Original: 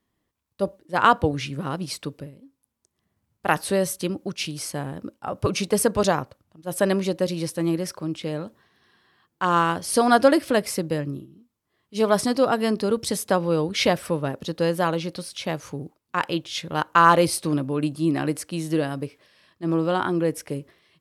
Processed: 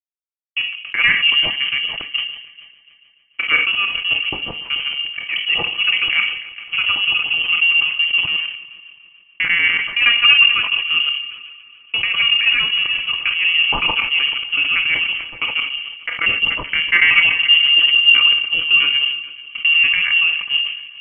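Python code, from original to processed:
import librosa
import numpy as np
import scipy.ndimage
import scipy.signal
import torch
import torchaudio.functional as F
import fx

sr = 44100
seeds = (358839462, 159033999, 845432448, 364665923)

p1 = fx.local_reverse(x, sr, ms=94.0)
p2 = scipy.signal.sosfilt(scipy.signal.butter(4, 44.0, 'highpass', fs=sr, output='sos'), p1)
p3 = fx.low_shelf(p2, sr, hz=67.0, db=-7.5)
p4 = fx.leveller(p3, sr, passes=1)
p5 = fx.level_steps(p4, sr, step_db=13)
p6 = p4 + (p5 * librosa.db_to_amplitude(0.0))
p7 = fx.leveller(p6, sr, passes=1)
p8 = np.sign(p7) * np.maximum(np.abs(p7) - 10.0 ** (-32.0 / 20.0), 0.0)
p9 = fx.small_body(p8, sr, hz=(290.0, 810.0, 1900.0), ring_ms=40, db=14)
p10 = p9 + fx.echo_heads(p9, sr, ms=145, heads='second and third', feedback_pct=41, wet_db=-21, dry=0)
p11 = fx.room_shoebox(p10, sr, seeds[0], volume_m3=740.0, walls='furnished', distance_m=0.84)
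p12 = fx.freq_invert(p11, sr, carrier_hz=3100)
p13 = fx.sustainer(p12, sr, db_per_s=71.0)
y = p13 * librosa.db_to_amplitude(-10.5)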